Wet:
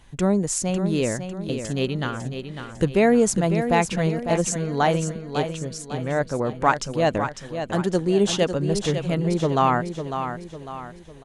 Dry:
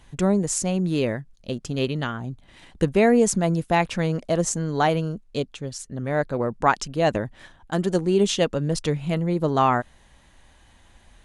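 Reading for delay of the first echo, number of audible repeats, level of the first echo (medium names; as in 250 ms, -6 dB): 551 ms, 4, -8.5 dB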